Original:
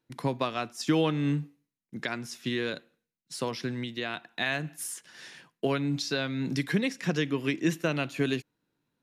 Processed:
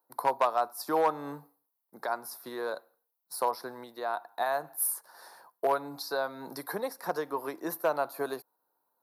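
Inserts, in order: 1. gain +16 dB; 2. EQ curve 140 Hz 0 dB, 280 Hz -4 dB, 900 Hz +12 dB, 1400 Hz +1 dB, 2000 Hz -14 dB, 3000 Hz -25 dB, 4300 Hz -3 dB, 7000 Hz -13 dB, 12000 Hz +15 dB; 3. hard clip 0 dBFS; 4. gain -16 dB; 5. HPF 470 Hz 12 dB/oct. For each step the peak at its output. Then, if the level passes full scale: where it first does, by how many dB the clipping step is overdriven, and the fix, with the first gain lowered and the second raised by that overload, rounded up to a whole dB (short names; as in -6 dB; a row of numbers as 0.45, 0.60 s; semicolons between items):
+1.5, +7.5, 0.0, -16.0, -12.5 dBFS; step 1, 7.5 dB; step 1 +8 dB, step 4 -8 dB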